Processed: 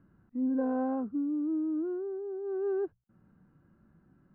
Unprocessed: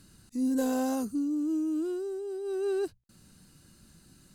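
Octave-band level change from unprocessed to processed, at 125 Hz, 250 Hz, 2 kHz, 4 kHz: n/a, -1.5 dB, -5.5 dB, under -30 dB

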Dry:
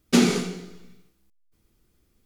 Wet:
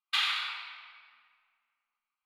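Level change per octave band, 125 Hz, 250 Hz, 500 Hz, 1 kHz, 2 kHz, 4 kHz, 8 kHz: under -40 dB, under -40 dB, under -40 dB, -3.5 dB, 0.0 dB, +1.0 dB, -18.5 dB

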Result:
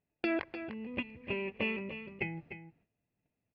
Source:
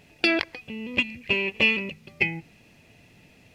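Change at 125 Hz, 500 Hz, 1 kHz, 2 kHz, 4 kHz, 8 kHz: -7.0 dB, -6.5 dB, -7.5 dB, -14.5 dB, -18.5 dB, n/a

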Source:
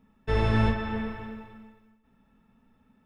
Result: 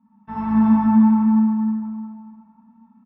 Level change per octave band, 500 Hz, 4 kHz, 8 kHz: under -10 dB, under -15 dB, n/a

